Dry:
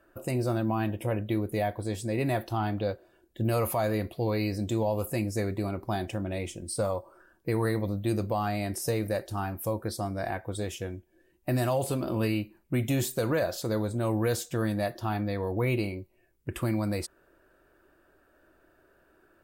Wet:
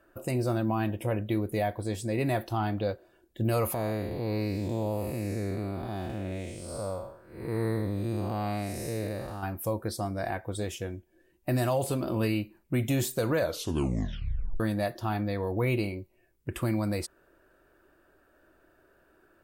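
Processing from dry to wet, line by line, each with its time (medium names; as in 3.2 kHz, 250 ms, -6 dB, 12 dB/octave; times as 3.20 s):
3.74–9.43 s: spectral blur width 262 ms
13.40 s: tape stop 1.20 s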